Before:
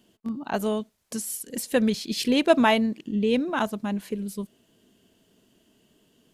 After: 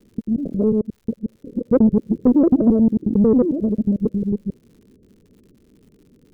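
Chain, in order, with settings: time reversed locally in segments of 90 ms; steep low-pass 550 Hz 72 dB/octave; bass shelf 120 Hz +10.5 dB; saturation -14 dBFS, distortion -21 dB; crackle 140 per s -55 dBFS; trim +8.5 dB

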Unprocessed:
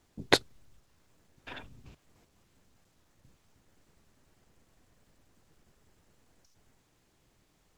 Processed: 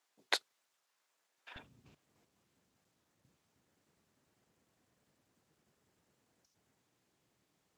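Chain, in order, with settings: high-pass 790 Hz 12 dB/octave, from 1.56 s 120 Hz; trim -7.5 dB

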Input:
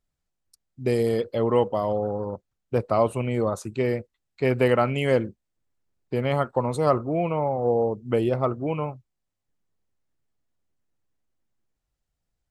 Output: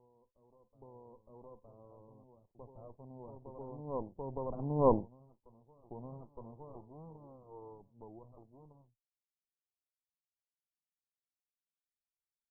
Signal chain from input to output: comb filter that takes the minimum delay 0.65 ms; Doppler pass-by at 4.88 s, 18 m/s, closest 1.3 m; in parallel at -0.5 dB: compression, threshold -49 dBFS, peak gain reduction 26.5 dB; on the sum: steep low-pass 1 kHz 72 dB/octave; reverse echo 914 ms -12.5 dB

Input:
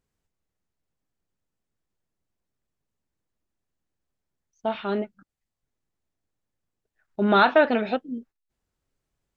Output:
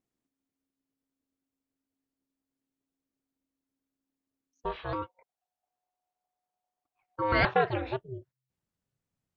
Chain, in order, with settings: ring modulator 270 Hz, from 4.93 s 730 Hz, from 7.45 s 130 Hz; trim -4.5 dB

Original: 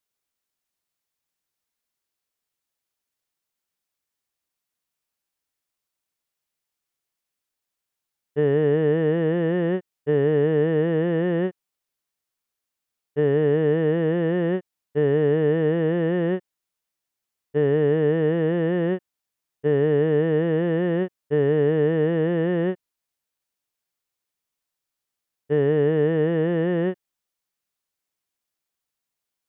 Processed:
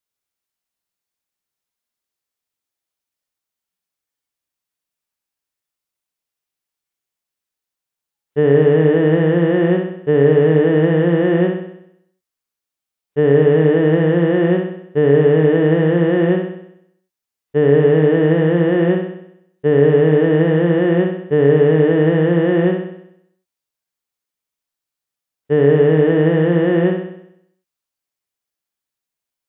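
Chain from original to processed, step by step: spectral noise reduction 9 dB; flutter echo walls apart 11 m, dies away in 0.75 s; trim +6.5 dB

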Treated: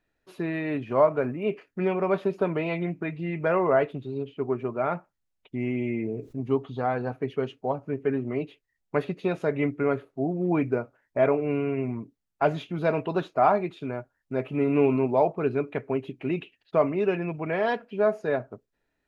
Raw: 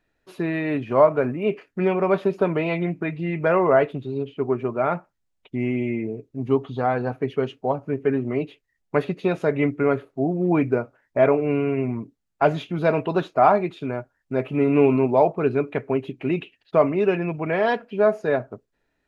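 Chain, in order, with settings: 5.67–6.41 s: level flattener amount 50%; trim -4.5 dB

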